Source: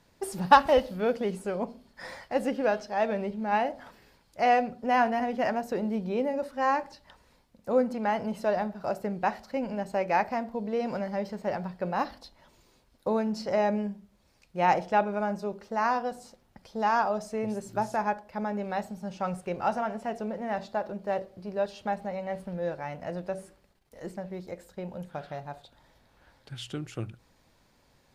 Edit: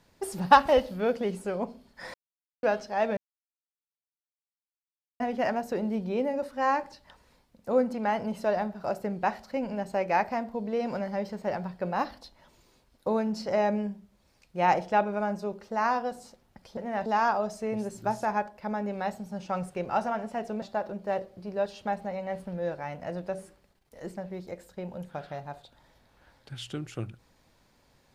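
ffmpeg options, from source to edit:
ffmpeg -i in.wav -filter_complex "[0:a]asplit=8[link_01][link_02][link_03][link_04][link_05][link_06][link_07][link_08];[link_01]atrim=end=2.14,asetpts=PTS-STARTPTS,afade=type=out:start_time=2.136:duration=0.004:curve=hsin[link_09];[link_02]atrim=start=2.14:end=2.63,asetpts=PTS-STARTPTS,volume=0[link_10];[link_03]atrim=start=2.63:end=3.17,asetpts=PTS-STARTPTS,afade=type=in:duration=0.004:curve=hsin,afade=type=out:start_time=0.536:duration=0.004:curve=hsin[link_11];[link_04]atrim=start=3.17:end=5.2,asetpts=PTS-STARTPTS,volume=0[link_12];[link_05]atrim=start=5.2:end=16.772,asetpts=PTS-STARTPTS,afade=type=in:duration=0.004:curve=hsin[link_13];[link_06]atrim=start=20.328:end=20.622[link_14];[link_07]atrim=start=16.768:end=20.332[link_15];[link_08]atrim=start=20.618[link_16];[link_09][link_10][link_11][link_12][link_13]concat=n=5:v=0:a=1[link_17];[link_17][link_14]acrossfade=duration=0.004:curve1=hsin:curve2=hsin[link_18];[link_18][link_15]acrossfade=duration=0.004:curve1=hsin:curve2=hsin[link_19];[link_19][link_16]acrossfade=duration=0.004:curve1=hsin:curve2=hsin" out.wav

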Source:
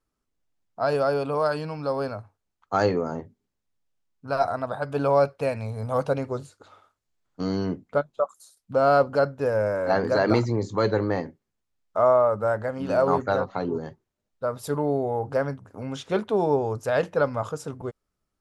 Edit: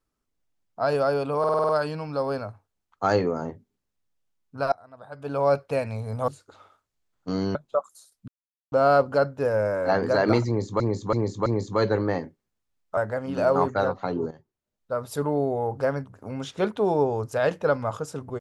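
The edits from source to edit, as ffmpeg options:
ffmpeg -i in.wav -filter_complex "[0:a]asplit=16[link_01][link_02][link_03][link_04][link_05][link_06][link_07][link_08][link_09][link_10][link_11][link_12][link_13][link_14][link_15][link_16];[link_01]atrim=end=1.442[link_17];[link_02]atrim=start=1.388:end=1.442[link_18];[link_03]atrim=start=1.388:end=1.442[link_19];[link_04]atrim=start=1.388:end=1.442[link_20];[link_05]atrim=start=1.388:end=1.442[link_21];[link_06]atrim=start=1.388:end=1.442[link_22];[link_07]atrim=start=1.388:end=4.42,asetpts=PTS-STARTPTS,afade=type=out:start_time=3.028:duration=0.004:curve=hsin:silence=0.0630957[link_23];[link_08]atrim=start=4.42:end=5.982,asetpts=PTS-STARTPTS,afade=type=in:duration=0.84:curve=qua:silence=0.0630957[link_24];[link_09]atrim=start=6.398:end=7.672[link_25];[link_10]atrim=start=7.998:end=8.73,asetpts=PTS-STARTPTS,afade=type=out:start_time=0.728:duration=0.004:curve=hsin,apad=pad_dur=0.44[link_26];[link_11]atrim=start=8.73:end=10.812,asetpts=PTS-STARTPTS,afade=type=in:duration=0.004:curve=hsin[link_27];[link_12]atrim=start=10.478:end=10.812[link_28];[link_13]atrim=start=10.478:end=10.812[link_29];[link_14]atrim=start=10.478:end=11.992[link_30];[link_15]atrim=start=12.488:end=13.83,asetpts=PTS-STARTPTS,afade=type=out:start_time=1.338:duration=0.004:curve=hsin:silence=0.199526[link_31];[link_16]atrim=start=13.83,asetpts=PTS-STARTPTS,afade=type=in:duration=0.73:silence=0.199526[link_32];[link_17][link_18]acrossfade=duration=0.004:curve1=hsin:curve2=hsin[link_33];[link_33][link_19]acrossfade=duration=0.004:curve1=hsin:curve2=hsin[link_34];[link_34][link_20]acrossfade=duration=0.004:curve1=hsin:curve2=hsin[link_35];[link_35][link_21]acrossfade=duration=0.004:curve1=hsin:curve2=hsin[link_36];[link_36][link_22]acrossfade=duration=0.004:curve1=hsin:curve2=hsin[link_37];[link_23][link_24]concat=n=2:v=0:a=1[link_38];[link_37][link_38]acrossfade=duration=0.004:curve1=hsin:curve2=hsin[link_39];[link_39][link_25]acrossfade=duration=0.004:curve1=hsin:curve2=hsin[link_40];[link_26][link_27]concat=n=2:v=0:a=1[link_41];[link_40][link_41]acrossfade=duration=0.004:curve1=hsin:curve2=hsin[link_42];[link_42][link_28]acrossfade=duration=0.004:curve1=hsin:curve2=hsin[link_43];[link_43][link_29]acrossfade=duration=0.004:curve1=hsin:curve2=hsin[link_44];[link_44][link_30]acrossfade=duration=0.004:curve1=hsin:curve2=hsin[link_45];[link_31][link_32]concat=n=2:v=0:a=1[link_46];[link_45][link_46]acrossfade=duration=0.004:curve1=hsin:curve2=hsin" out.wav

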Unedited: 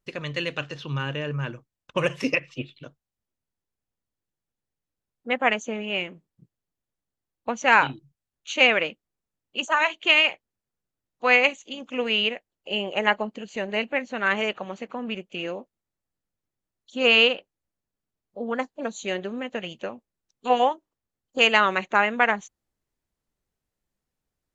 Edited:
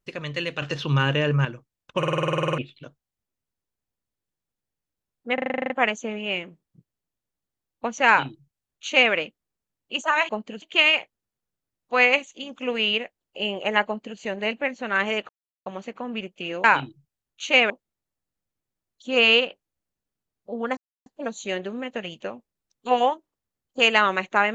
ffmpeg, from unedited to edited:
ffmpeg -i in.wav -filter_complex "[0:a]asplit=30[link_01][link_02][link_03][link_04][link_05][link_06][link_07][link_08][link_09][link_10][link_11][link_12][link_13][link_14][link_15][link_16][link_17][link_18][link_19][link_20][link_21][link_22][link_23][link_24][link_25][link_26][link_27][link_28][link_29][link_30];[link_01]atrim=end=0.622[link_31];[link_02]atrim=start=0.618:end=1.452,asetpts=PTS-STARTPTS,volume=7.5dB[link_32];[link_03]atrim=start=1.448:end=2.032[link_33];[link_04]atrim=start=1.978:end=2.032[link_34];[link_05]atrim=start=1.978:end=2.032[link_35];[link_06]atrim=start=1.978:end=2.032[link_36];[link_07]atrim=start=1.978:end=2.032[link_37];[link_08]atrim=start=1.978:end=2.032[link_38];[link_09]atrim=start=1.978:end=2.032[link_39];[link_10]atrim=start=1.978:end=2.032[link_40];[link_11]atrim=start=1.978:end=2.032[link_41];[link_12]atrim=start=1.978:end=2.032[link_42];[link_13]atrim=start=1.978:end=2.032[link_43];[link_14]atrim=start=1.978:end=2.032[link_44];[link_15]atrim=start=2.578:end=5.382[link_45];[link_16]atrim=start=5.338:end=5.382[link_46];[link_17]atrim=start=5.338:end=5.382[link_47];[link_18]atrim=start=5.338:end=5.382[link_48];[link_19]atrim=start=5.338:end=5.382[link_49];[link_20]atrim=start=5.338:end=5.382[link_50];[link_21]atrim=start=5.338:end=5.382[link_51];[link_22]atrim=start=5.338:end=5.382[link_52];[link_23]atrim=start=5.338:end=5.382[link_53];[link_24]atrim=start=5.338:end=9.932[link_54];[link_25]atrim=start=13.168:end=13.502[link_55];[link_26]atrim=start=9.928:end=14.6,asetpts=PTS-STARTPTS,afade=type=out:start_time=4.668:duration=0.004:curve=hsin,apad=pad_dur=0.37[link_56];[link_27]atrim=start=14.6:end=15.582,asetpts=PTS-STARTPTS,afade=type=in:duration=0.004:curve=hsin[link_57];[link_28]atrim=start=7.708:end=8.772[link_58];[link_29]atrim=start=15.578:end=18.65,asetpts=PTS-STARTPTS,afade=type=out:start_time=3.068:duration=0.004:curve=hsin,apad=pad_dur=0.29[link_59];[link_30]atrim=start=18.65,asetpts=PTS-STARTPTS,afade=type=in:duration=0.004:curve=hsin[link_60];[link_31][link_32]acrossfade=duration=0.004:curve1=hsin:curve2=hsin[link_61];[link_61][link_33]acrossfade=duration=0.004:curve1=hsin:curve2=hsin[link_62];[link_62][link_34]acrossfade=duration=0.004:curve1=hsin:curve2=hsin[link_63];[link_63][link_35]acrossfade=duration=0.004:curve1=hsin:curve2=hsin[link_64];[link_64][link_36]acrossfade=duration=0.004:curve1=hsin:curve2=hsin[link_65];[link_65][link_37]acrossfade=duration=0.004:curve1=hsin:curve2=hsin[link_66];[link_66][link_38]acrossfade=duration=0.004:curve1=hsin:curve2=hsin[link_67];[link_67][link_39]acrossfade=duration=0.004:curve1=hsin:curve2=hsin[link_68];[link_68][link_40]acrossfade=duration=0.004:curve1=hsin:curve2=hsin[link_69];[link_69][link_41]acrossfade=duration=0.004:curve1=hsin:curve2=hsin[link_70];[link_70][link_42]acrossfade=duration=0.004:curve1=hsin:curve2=hsin[link_71];[link_71][link_43]acrossfade=duration=0.004:curve1=hsin:curve2=hsin[link_72];[link_72][link_44]acrossfade=duration=0.004:curve1=hsin:curve2=hsin[link_73];[link_73][link_45]acrossfade=duration=0.004:curve1=hsin:curve2=hsin[link_74];[link_74][link_46]acrossfade=duration=0.004:curve1=hsin:curve2=hsin[link_75];[link_75][link_47]acrossfade=duration=0.004:curve1=hsin:curve2=hsin[link_76];[link_76][link_48]acrossfade=duration=0.004:curve1=hsin:curve2=hsin[link_77];[link_77][link_49]acrossfade=duration=0.004:curve1=hsin:curve2=hsin[link_78];[link_78][link_50]acrossfade=duration=0.004:curve1=hsin:curve2=hsin[link_79];[link_79][link_51]acrossfade=duration=0.004:curve1=hsin:curve2=hsin[link_80];[link_80][link_52]acrossfade=duration=0.004:curve1=hsin:curve2=hsin[link_81];[link_81][link_53]acrossfade=duration=0.004:curve1=hsin:curve2=hsin[link_82];[link_82][link_54]acrossfade=duration=0.004:curve1=hsin:curve2=hsin[link_83];[link_83][link_55]acrossfade=duration=0.004:curve1=hsin:curve2=hsin[link_84];[link_56][link_57]concat=n=2:v=0:a=1[link_85];[link_84][link_85]acrossfade=duration=0.004:curve1=hsin:curve2=hsin[link_86];[link_86][link_58]acrossfade=duration=0.004:curve1=hsin:curve2=hsin[link_87];[link_59][link_60]concat=n=2:v=0:a=1[link_88];[link_87][link_88]acrossfade=duration=0.004:curve1=hsin:curve2=hsin" out.wav

